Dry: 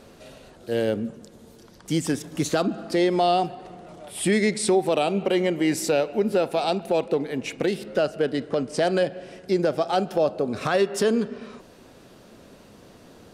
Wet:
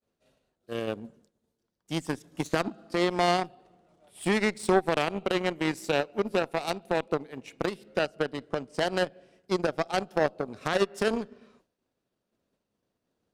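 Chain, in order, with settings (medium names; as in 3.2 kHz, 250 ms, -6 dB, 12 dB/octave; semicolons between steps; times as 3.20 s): expander -38 dBFS; Chebyshev shaper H 3 -11 dB, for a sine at -11 dBFS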